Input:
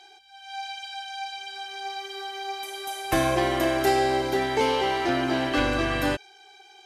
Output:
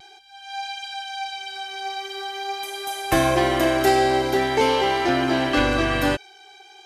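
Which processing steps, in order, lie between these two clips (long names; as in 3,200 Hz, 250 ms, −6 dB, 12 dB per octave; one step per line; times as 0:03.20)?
pitch vibrato 0.45 Hz 14 cents
level +4 dB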